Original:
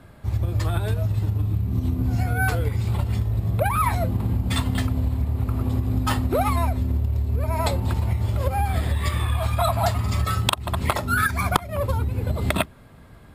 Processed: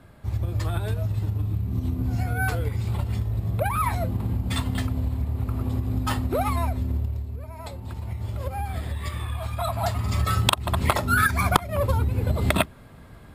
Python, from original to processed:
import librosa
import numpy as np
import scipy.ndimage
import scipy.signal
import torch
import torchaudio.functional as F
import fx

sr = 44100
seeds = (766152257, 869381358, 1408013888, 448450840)

y = fx.gain(x, sr, db=fx.line((7.02, -3.0), (7.55, -15.5), (8.26, -7.0), (9.55, -7.0), (10.38, 1.0)))